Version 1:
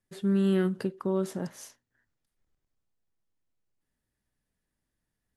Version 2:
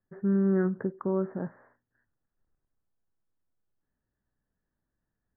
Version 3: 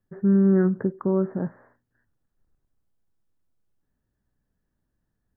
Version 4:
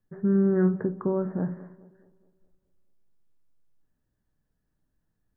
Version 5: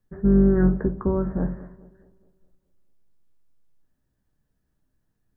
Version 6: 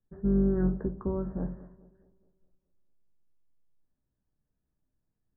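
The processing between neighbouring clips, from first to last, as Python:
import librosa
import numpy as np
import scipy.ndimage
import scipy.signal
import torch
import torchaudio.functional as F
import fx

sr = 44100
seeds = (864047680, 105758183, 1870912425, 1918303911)

y1 = scipy.signal.sosfilt(scipy.signal.butter(12, 1800.0, 'lowpass', fs=sr, output='sos'), x)
y2 = fx.low_shelf(y1, sr, hz=400.0, db=6.0)
y2 = F.gain(torch.from_numpy(y2), 2.0).numpy()
y3 = fx.echo_tape(y2, sr, ms=212, feedback_pct=53, wet_db=-17.5, lp_hz=1400.0, drive_db=9.0, wow_cents=16)
y3 = fx.room_shoebox(y3, sr, seeds[0], volume_m3=210.0, walls='furnished', distance_m=0.5)
y3 = F.gain(torch.from_numpy(y3), -2.0).numpy()
y4 = fx.octave_divider(y3, sr, octaves=2, level_db=-3.0)
y4 = fx.doubler(y4, sr, ms=15.0, db=-11.0)
y4 = F.gain(torch.from_numpy(y4), 2.5).numpy()
y5 = scipy.signal.sosfilt(scipy.signal.butter(2, 1300.0, 'lowpass', fs=sr, output='sos'), y4)
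y5 = F.gain(torch.from_numpy(y5), -8.0).numpy()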